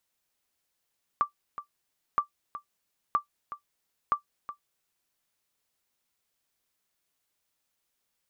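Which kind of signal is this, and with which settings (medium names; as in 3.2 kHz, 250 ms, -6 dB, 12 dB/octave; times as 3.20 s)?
sonar ping 1.17 kHz, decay 0.11 s, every 0.97 s, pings 4, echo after 0.37 s, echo -13.5 dB -15 dBFS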